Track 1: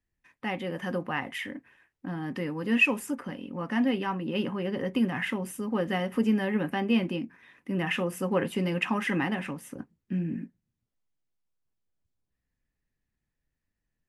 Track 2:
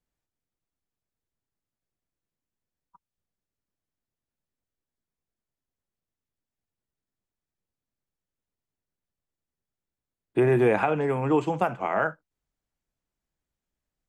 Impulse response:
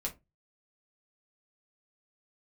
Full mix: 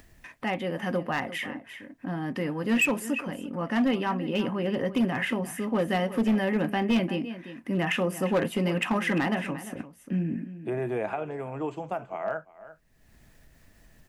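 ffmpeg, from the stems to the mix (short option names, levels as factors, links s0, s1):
-filter_complex "[0:a]volume=1.26,asplit=2[s0][s1];[s1]volume=0.188[s2];[1:a]adelay=300,volume=0.316,asplit=2[s3][s4];[s4]volume=0.0841[s5];[s2][s5]amix=inputs=2:normalize=0,aecho=0:1:347:1[s6];[s0][s3][s6]amix=inputs=3:normalize=0,equalizer=f=650:t=o:w=0.23:g=8.5,acompressor=mode=upward:threshold=0.0178:ratio=2.5,asoftclip=type=hard:threshold=0.112"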